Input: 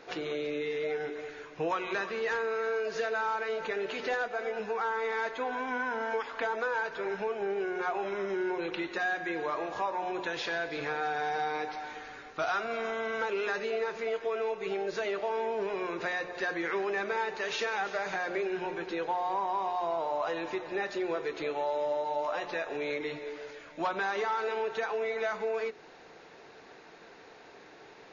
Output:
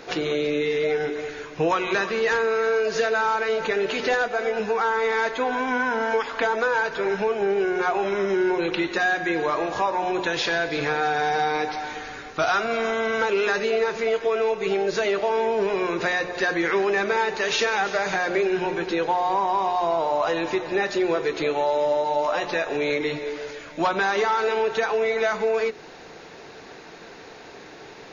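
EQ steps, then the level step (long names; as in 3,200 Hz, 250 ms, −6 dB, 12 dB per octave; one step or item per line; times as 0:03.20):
low-shelf EQ 300 Hz +6.5 dB
high-shelf EQ 3,700 Hz +7 dB
+7.5 dB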